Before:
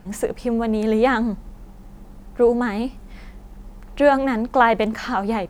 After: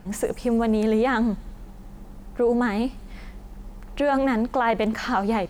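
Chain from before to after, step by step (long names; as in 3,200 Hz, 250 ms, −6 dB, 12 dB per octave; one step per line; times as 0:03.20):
brickwall limiter −13 dBFS, peak gain reduction 10 dB
on a send: delay with a high-pass on its return 89 ms, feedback 76%, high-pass 4,600 Hz, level −16 dB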